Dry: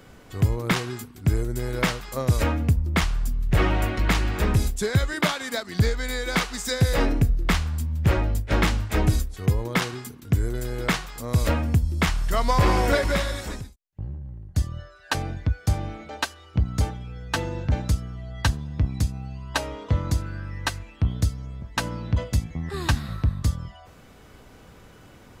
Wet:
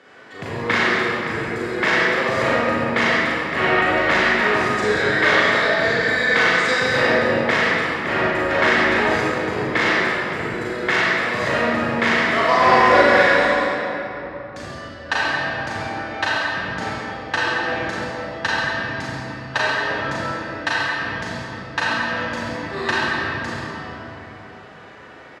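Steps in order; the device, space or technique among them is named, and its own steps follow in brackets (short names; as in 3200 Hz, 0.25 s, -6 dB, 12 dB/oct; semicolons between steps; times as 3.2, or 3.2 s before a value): station announcement (BPF 370–4300 Hz; bell 1800 Hz +8.5 dB 0.25 oct; loudspeakers at several distances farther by 13 m -5 dB, 47 m -9 dB; reverb RT60 3.5 s, pre-delay 33 ms, DRR -7 dB); gain +1 dB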